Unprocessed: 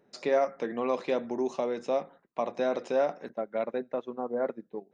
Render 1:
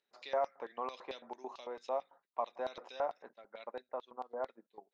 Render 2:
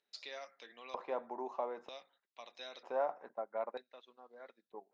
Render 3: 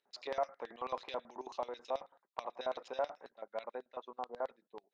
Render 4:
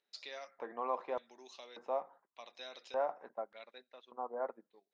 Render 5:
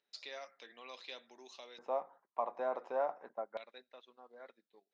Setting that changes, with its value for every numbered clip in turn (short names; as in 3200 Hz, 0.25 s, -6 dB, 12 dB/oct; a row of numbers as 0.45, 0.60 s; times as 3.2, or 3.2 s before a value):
LFO band-pass, rate: 4.5, 0.53, 9.2, 0.85, 0.28 Hz